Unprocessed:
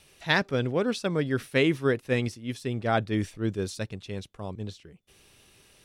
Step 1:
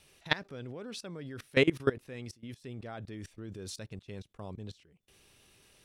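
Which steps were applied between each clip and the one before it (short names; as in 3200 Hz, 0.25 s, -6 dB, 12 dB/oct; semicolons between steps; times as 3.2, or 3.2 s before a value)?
level quantiser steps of 21 dB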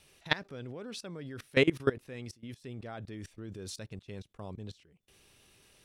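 nothing audible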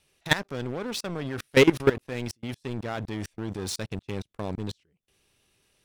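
sample leveller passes 3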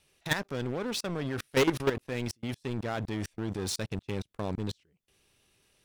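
soft clip -20 dBFS, distortion -7 dB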